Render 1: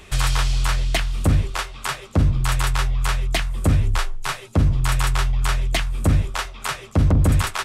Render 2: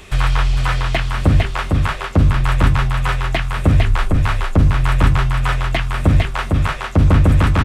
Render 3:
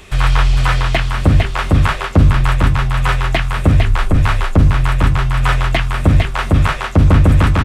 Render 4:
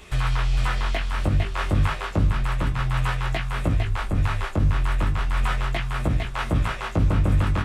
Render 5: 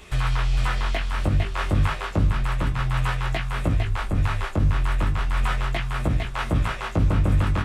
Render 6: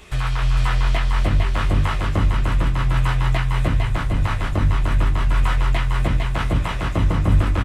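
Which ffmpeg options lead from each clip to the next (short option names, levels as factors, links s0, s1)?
-filter_complex "[0:a]acrossover=split=3100[s0][s1];[s1]acompressor=threshold=0.00562:ratio=4:attack=1:release=60[s2];[s0][s2]amix=inputs=2:normalize=0,aecho=1:1:454:0.668,volume=1.68"
-af "dynaudnorm=f=130:g=3:m=2"
-af "alimiter=limit=0.376:level=0:latency=1:release=439,flanger=delay=16.5:depth=3.9:speed=0.32,volume=0.75"
-af anull
-af "aecho=1:1:301|602|903|1204|1505|1806|2107|2408:0.501|0.296|0.174|0.103|0.0607|0.0358|0.0211|0.0125,volume=1.12"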